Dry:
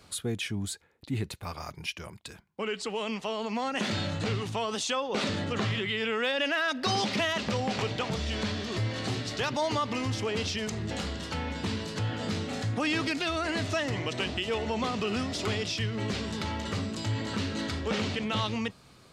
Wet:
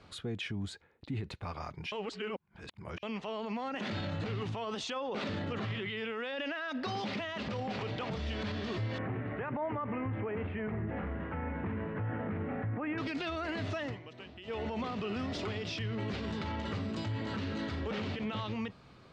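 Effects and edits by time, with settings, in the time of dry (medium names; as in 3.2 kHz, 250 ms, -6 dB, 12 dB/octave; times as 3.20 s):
1.92–3.03 s: reverse
8.98–12.98 s: steep low-pass 2.2 kHz
13.73–14.68 s: dip -16.5 dB, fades 0.26 s
whole clip: Bessel low-pass 2.8 kHz, order 2; peak limiter -28.5 dBFS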